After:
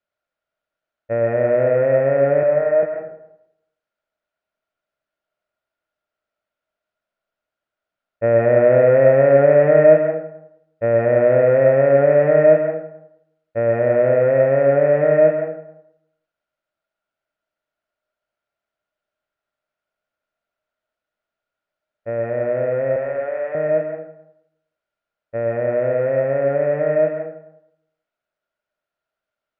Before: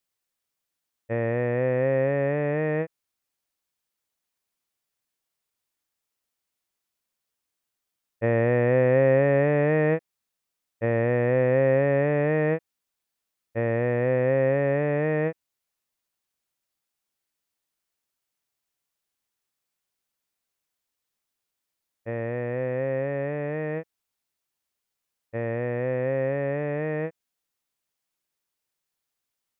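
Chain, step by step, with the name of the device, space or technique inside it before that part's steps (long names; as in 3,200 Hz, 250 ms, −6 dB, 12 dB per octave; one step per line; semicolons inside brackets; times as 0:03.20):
inside a cardboard box (low-pass filter 2,800 Hz 12 dB per octave; hollow resonant body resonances 620/1,400 Hz, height 15 dB, ringing for 35 ms)
0:02.43–0:02.83: three-way crossover with the lows and the highs turned down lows −16 dB, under 460 Hz, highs −12 dB, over 2,000 Hz
0:22.96–0:23.55: high-pass filter 640 Hz 12 dB per octave
comb and all-pass reverb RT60 0.82 s, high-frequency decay 0.55×, pre-delay 75 ms, DRR 3.5 dB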